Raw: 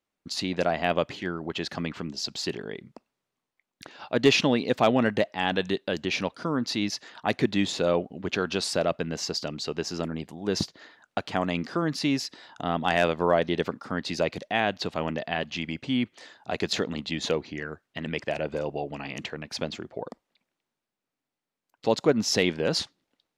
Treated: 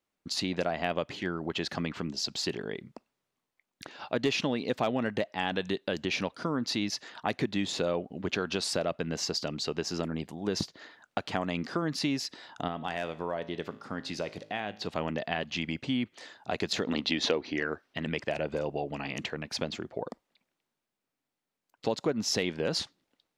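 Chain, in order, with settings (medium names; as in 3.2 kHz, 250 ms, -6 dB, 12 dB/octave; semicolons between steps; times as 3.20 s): 16.87–17.94 s: time-frequency box 230–6200 Hz +8 dB; compression 3:1, threshold -27 dBFS, peak gain reduction 10.5 dB; 12.68–14.87 s: feedback comb 53 Hz, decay 0.66 s, harmonics all, mix 50%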